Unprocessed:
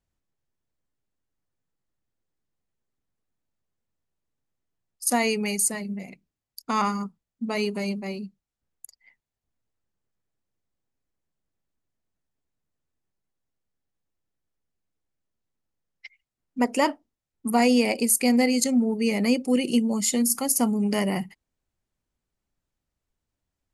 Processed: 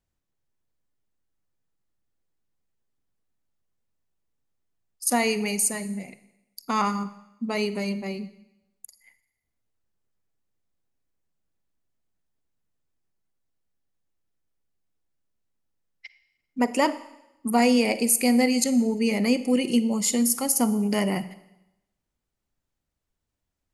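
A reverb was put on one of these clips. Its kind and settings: Schroeder reverb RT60 0.9 s, DRR 14 dB

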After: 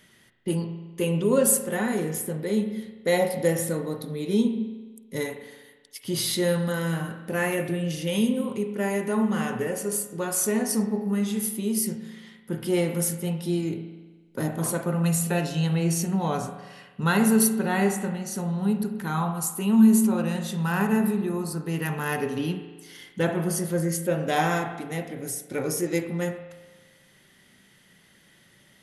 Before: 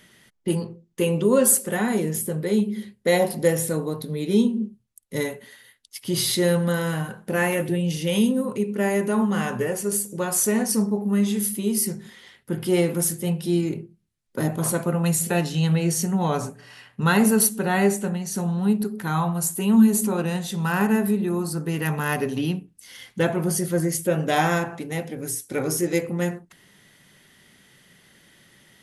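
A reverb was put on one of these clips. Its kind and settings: spring tank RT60 1.3 s, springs 36 ms, chirp 35 ms, DRR 7.5 dB; trim -3.5 dB

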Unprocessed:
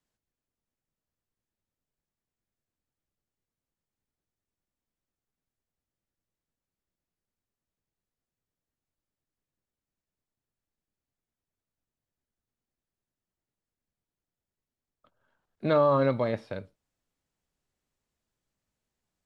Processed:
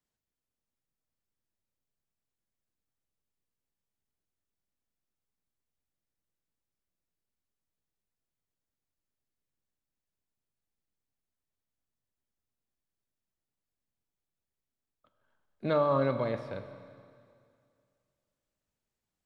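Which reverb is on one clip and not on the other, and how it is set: Schroeder reverb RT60 2.3 s, combs from 29 ms, DRR 9.5 dB; trim -4 dB

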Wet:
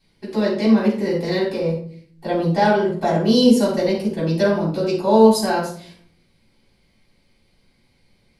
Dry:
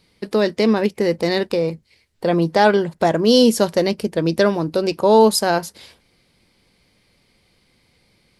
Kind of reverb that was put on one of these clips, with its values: simulated room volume 490 m³, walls furnished, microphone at 8.7 m; trim -14.5 dB

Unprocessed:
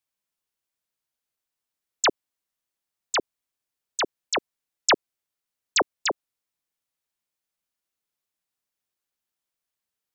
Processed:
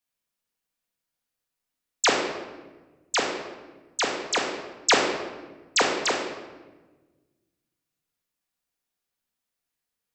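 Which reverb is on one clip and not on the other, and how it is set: simulated room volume 890 m³, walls mixed, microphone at 1.8 m; trim -1.5 dB

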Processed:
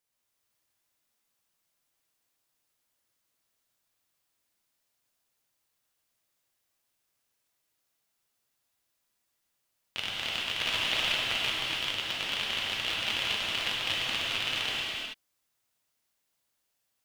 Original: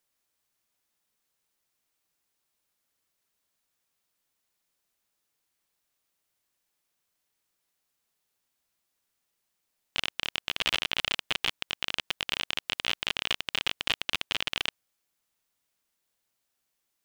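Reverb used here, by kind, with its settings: gated-style reverb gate 460 ms flat, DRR -6 dB; trim -6 dB

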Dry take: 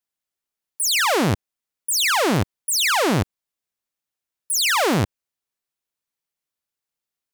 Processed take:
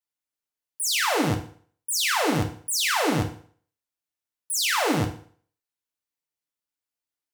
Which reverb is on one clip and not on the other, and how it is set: FDN reverb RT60 0.5 s, low-frequency decay 0.9×, high-frequency decay 0.9×, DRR 2 dB; trim -6.5 dB

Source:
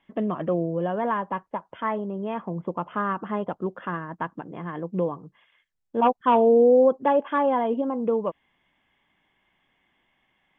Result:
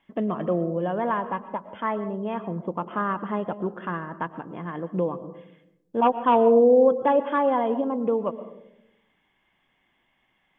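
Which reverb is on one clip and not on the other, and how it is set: algorithmic reverb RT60 0.83 s, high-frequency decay 0.25×, pre-delay 80 ms, DRR 13 dB

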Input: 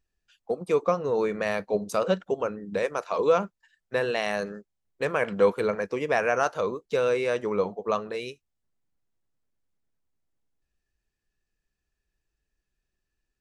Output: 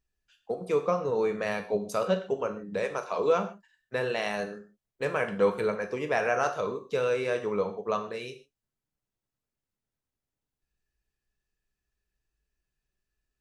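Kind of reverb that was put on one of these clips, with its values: gated-style reverb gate 170 ms falling, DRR 5.5 dB; trim -3.5 dB

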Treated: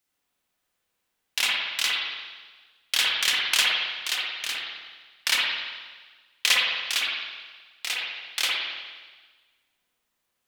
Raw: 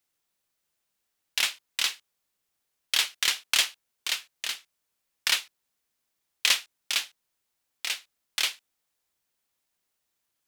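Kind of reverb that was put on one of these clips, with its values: spring tank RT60 1.4 s, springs 53/57 ms, chirp 35 ms, DRR -4 dB

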